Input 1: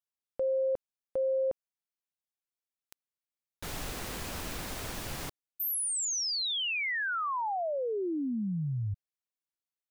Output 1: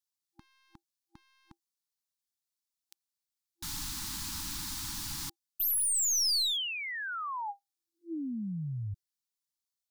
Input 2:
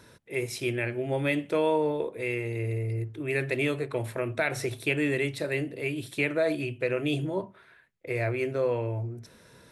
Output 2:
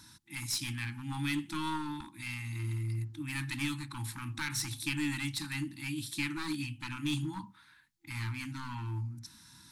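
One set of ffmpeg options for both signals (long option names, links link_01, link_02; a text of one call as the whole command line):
ffmpeg -i in.wav -af "highshelf=frequency=3300:width_type=q:width=1.5:gain=7.5,aeval=exprs='clip(val(0),-1,0.0501)':channel_layout=same,afftfilt=real='re*(1-between(b*sr/4096,340,800))':imag='im*(1-between(b*sr/4096,340,800))':win_size=4096:overlap=0.75,volume=-3.5dB" out.wav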